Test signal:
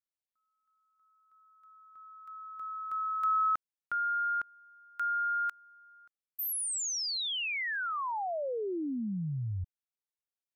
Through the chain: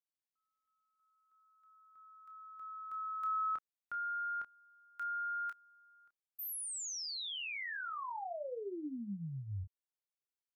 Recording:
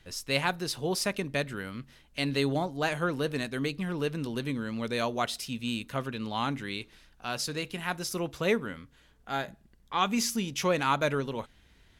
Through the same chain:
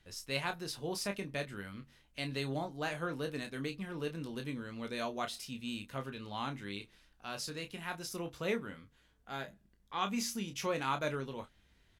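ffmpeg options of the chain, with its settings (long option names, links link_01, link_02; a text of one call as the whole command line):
ffmpeg -i in.wav -af "aecho=1:1:20|30:0.282|0.355,volume=-8.5dB" out.wav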